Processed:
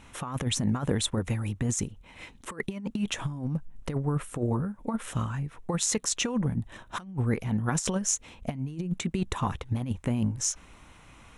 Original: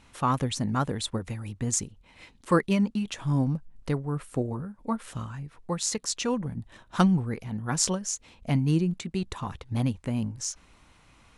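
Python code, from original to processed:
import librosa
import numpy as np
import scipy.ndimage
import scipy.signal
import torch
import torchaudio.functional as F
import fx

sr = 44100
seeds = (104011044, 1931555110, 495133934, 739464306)

y = fx.over_compress(x, sr, threshold_db=-29.0, ratio=-0.5)
y = fx.peak_eq(y, sr, hz=4600.0, db=-9.0, octaves=0.35)
y = F.gain(torch.from_numpy(y), 2.0).numpy()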